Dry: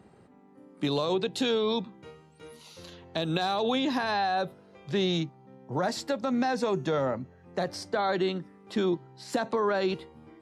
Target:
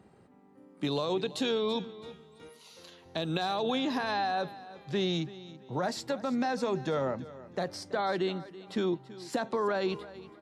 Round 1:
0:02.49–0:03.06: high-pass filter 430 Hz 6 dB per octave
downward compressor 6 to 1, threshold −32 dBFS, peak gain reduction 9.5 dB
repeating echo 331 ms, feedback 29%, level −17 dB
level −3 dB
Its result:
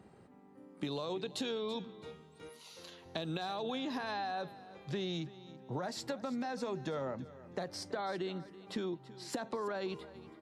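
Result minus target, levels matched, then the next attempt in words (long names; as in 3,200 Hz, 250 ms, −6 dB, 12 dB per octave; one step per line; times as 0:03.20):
downward compressor: peak gain reduction +9.5 dB
0:02.49–0:03.06: high-pass filter 430 Hz 6 dB per octave
repeating echo 331 ms, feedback 29%, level −17 dB
level −3 dB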